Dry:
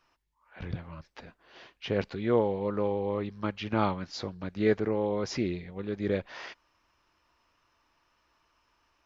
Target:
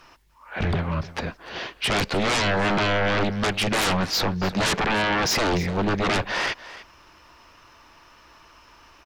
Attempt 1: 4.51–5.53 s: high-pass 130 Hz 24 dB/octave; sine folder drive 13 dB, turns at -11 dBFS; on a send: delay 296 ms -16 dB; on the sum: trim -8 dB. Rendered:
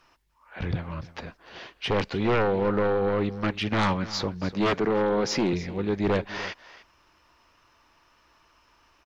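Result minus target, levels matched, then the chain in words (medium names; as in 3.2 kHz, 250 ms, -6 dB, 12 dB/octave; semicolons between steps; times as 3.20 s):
sine folder: distortion -14 dB
4.51–5.53 s: high-pass 130 Hz 24 dB/octave; sine folder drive 23 dB, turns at -11 dBFS; on a send: delay 296 ms -16 dB; on the sum: trim -8 dB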